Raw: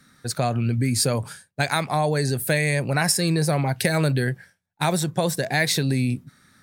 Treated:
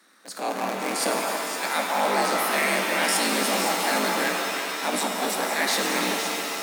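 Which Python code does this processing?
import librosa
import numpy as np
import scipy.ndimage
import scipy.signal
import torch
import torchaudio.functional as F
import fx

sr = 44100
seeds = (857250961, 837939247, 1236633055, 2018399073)

y = fx.cycle_switch(x, sr, every=3, mode='inverted')
y = fx.low_shelf(y, sr, hz=310.0, db=-11.5)
y = fx.transient(y, sr, attack_db=-12, sustain_db=0)
y = scipy.signal.sosfilt(scipy.signal.cheby1(6, 3, 180.0, 'highpass', fs=sr, output='sos'), y)
y = fx.echo_stepped(y, sr, ms=171, hz=920.0, octaves=1.4, feedback_pct=70, wet_db=-1.0)
y = fx.rev_shimmer(y, sr, seeds[0], rt60_s=3.0, semitones=7, shimmer_db=-2, drr_db=2.5)
y = F.gain(torch.from_numpy(y), 1.5).numpy()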